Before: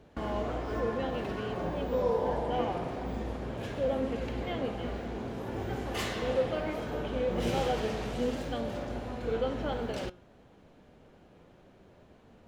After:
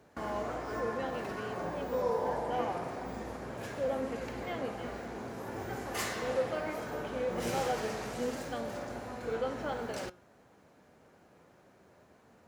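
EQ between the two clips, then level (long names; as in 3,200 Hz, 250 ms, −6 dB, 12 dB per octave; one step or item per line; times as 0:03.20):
high-pass filter 77 Hz
tilt shelving filter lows −6 dB, about 840 Hz
parametric band 3,200 Hz −11 dB 1 octave
0.0 dB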